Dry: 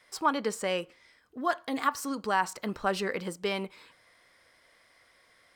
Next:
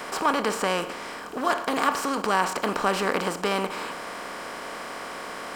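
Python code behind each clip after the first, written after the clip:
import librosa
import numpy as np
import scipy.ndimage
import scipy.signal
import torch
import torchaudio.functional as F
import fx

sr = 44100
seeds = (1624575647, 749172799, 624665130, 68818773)

y = fx.bin_compress(x, sr, power=0.4)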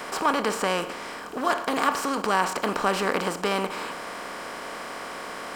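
y = x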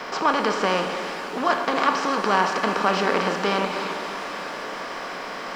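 y = scipy.signal.sosfilt(scipy.signal.ellip(3, 1.0, 40, [150.0, 5700.0], 'bandpass', fs=sr, output='sos'), x)
y = fx.dmg_noise_colour(y, sr, seeds[0], colour='pink', level_db=-61.0)
y = fx.rev_shimmer(y, sr, seeds[1], rt60_s=3.3, semitones=7, shimmer_db=-8, drr_db=5.5)
y = F.gain(torch.from_numpy(y), 2.5).numpy()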